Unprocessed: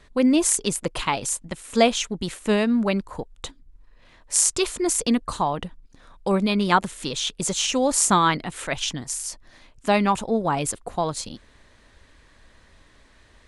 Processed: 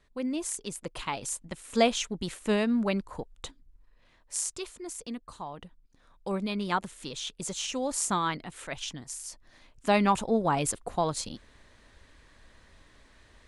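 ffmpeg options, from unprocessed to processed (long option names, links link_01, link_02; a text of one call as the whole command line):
ffmpeg -i in.wav -af "volume=8.5dB,afade=type=in:start_time=0.63:duration=1.14:silence=0.398107,afade=type=out:start_time=3.34:duration=1.41:silence=0.266073,afade=type=in:start_time=5.37:duration=0.96:silence=0.446684,afade=type=in:start_time=9.22:duration=0.87:silence=0.446684" out.wav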